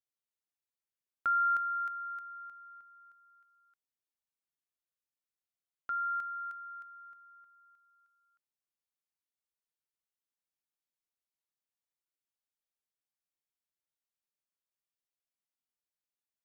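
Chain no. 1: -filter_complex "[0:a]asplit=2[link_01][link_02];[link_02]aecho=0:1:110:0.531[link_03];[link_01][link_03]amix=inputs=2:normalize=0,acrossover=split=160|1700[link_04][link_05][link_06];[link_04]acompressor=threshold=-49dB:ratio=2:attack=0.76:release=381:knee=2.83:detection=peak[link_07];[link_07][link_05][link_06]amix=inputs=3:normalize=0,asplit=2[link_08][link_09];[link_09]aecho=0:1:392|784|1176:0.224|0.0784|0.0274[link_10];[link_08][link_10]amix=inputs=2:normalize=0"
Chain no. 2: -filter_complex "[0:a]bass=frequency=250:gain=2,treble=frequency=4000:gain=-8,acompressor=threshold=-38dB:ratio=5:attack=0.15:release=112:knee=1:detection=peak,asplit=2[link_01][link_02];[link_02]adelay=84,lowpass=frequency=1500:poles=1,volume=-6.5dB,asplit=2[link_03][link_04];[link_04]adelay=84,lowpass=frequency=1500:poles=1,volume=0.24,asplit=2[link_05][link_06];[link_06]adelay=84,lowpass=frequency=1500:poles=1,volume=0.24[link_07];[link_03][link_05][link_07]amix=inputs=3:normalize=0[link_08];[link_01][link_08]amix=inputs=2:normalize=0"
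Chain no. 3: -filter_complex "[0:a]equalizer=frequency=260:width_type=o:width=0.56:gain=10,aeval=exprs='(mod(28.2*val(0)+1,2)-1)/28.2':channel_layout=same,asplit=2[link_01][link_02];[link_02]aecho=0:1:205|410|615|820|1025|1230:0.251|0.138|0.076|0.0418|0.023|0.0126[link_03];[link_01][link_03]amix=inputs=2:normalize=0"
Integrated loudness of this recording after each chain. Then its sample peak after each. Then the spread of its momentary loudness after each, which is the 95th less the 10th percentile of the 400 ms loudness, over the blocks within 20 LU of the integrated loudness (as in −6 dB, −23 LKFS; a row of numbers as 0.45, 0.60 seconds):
−30.5, −40.0, −35.0 LKFS; −21.0, −33.0, −28.0 dBFS; 22, 19, 19 LU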